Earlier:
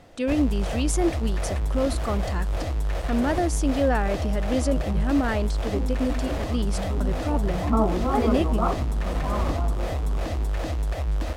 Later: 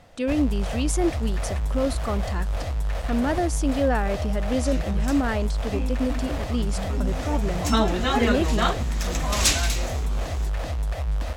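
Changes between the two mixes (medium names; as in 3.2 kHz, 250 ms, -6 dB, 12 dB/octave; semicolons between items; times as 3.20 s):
first sound: add peaking EQ 330 Hz -9.5 dB 0.69 oct; second sound: remove steep low-pass 1.3 kHz 96 dB/octave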